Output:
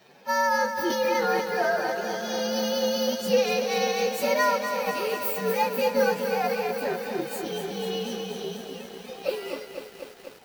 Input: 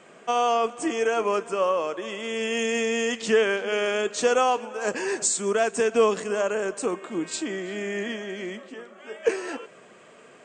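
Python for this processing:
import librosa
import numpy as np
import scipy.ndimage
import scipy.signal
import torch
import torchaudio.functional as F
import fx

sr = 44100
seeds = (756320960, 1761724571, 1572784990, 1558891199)

y = fx.partial_stretch(x, sr, pct=124)
y = fx.transient(y, sr, attack_db=-1, sustain_db=8, at=(0.76, 1.4), fade=0.02)
y = fx.echo_crushed(y, sr, ms=246, feedback_pct=80, bits=8, wet_db=-7.5)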